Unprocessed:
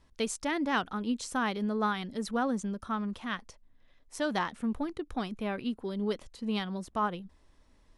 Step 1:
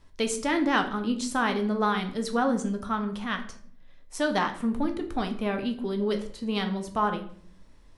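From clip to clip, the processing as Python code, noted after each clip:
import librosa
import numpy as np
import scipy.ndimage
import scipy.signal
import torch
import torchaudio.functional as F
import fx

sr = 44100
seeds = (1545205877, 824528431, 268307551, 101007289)

y = fx.room_shoebox(x, sr, seeds[0], volume_m3=76.0, walls='mixed', distance_m=0.42)
y = F.gain(torch.from_numpy(y), 4.0).numpy()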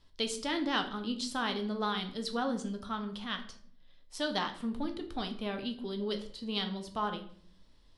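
y = fx.band_shelf(x, sr, hz=3900.0, db=9.0, octaves=1.0)
y = F.gain(torch.from_numpy(y), -8.0).numpy()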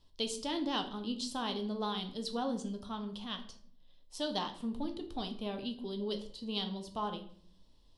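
y = fx.band_shelf(x, sr, hz=1700.0, db=-8.5, octaves=1.1)
y = F.gain(torch.from_numpy(y), -2.0).numpy()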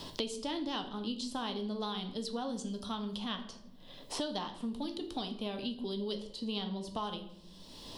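y = fx.band_squash(x, sr, depth_pct=100)
y = F.gain(torch.from_numpy(y), -1.0).numpy()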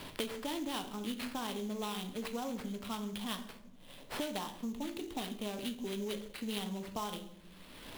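y = fx.sample_hold(x, sr, seeds[1], rate_hz=6700.0, jitter_pct=20)
y = F.gain(torch.from_numpy(y), -1.5).numpy()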